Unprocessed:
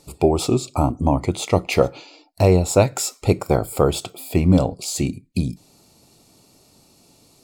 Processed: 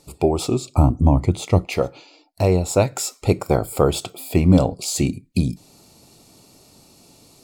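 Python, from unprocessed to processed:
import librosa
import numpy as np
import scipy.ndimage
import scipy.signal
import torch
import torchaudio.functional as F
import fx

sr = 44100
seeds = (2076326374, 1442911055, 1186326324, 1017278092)

y = fx.low_shelf(x, sr, hz=210.0, db=12.0, at=(0.76, 1.65))
y = fx.rider(y, sr, range_db=5, speed_s=2.0)
y = y * 10.0 ** (-1.5 / 20.0)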